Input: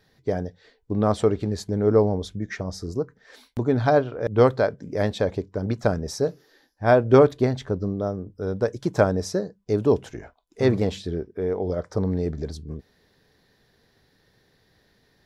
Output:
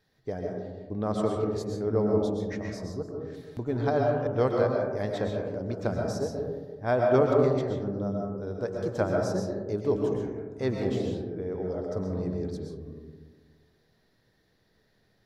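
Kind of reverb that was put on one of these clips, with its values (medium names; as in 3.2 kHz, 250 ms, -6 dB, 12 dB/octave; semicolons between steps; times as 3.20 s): algorithmic reverb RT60 1.4 s, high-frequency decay 0.25×, pre-delay 85 ms, DRR 0 dB; trim -9 dB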